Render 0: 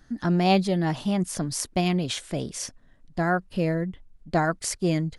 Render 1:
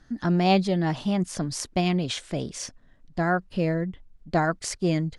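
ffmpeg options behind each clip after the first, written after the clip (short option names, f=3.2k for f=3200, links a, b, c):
-af "lowpass=7.7k"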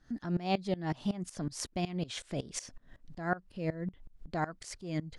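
-af "acompressor=threshold=-42dB:ratio=2,aeval=exprs='val(0)*pow(10,-20*if(lt(mod(-5.4*n/s,1),2*abs(-5.4)/1000),1-mod(-5.4*n/s,1)/(2*abs(-5.4)/1000),(mod(-5.4*n/s,1)-2*abs(-5.4)/1000)/(1-2*abs(-5.4)/1000))/20)':c=same,volume=7.5dB"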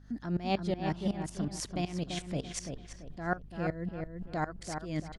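-filter_complex "[0:a]aeval=exprs='val(0)+0.00224*(sin(2*PI*50*n/s)+sin(2*PI*2*50*n/s)/2+sin(2*PI*3*50*n/s)/3+sin(2*PI*4*50*n/s)/4+sin(2*PI*5*50*n/s)/5)':c=same,asplit=2[a][b];[b]adelay=338,lowpass=f=2.6k:p=1,volume=-5.5dB,asplit=2[c][d];[d]adelay=338,lowpass=f=2.6k:p=1,volume=0.34,asplit=2[e][f];[f]adelay=338,lowpass=f=2.6k:p=1,volume=0.34,asplit=2[g][h];[h]adelay=338,lowpass=f=2.6k:p=1,volume=0.34[i];[c][e][g][i]amix=inputs=4:normalize=0[j];[a][j]amix=inputs=2:normalize=0"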